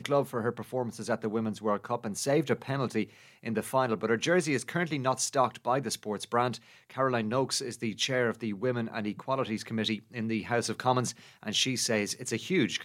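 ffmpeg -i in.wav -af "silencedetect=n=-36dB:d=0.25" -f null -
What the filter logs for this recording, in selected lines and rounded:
silence_start: 3.04
silence_end: 3.46 | silence_duration: 0.42
silence_start: 6.56
silence_end: 6.96 | silence_duration: 0.39
silence_start: 11.11
silence_end: 11.43 | silence_duration: 0.32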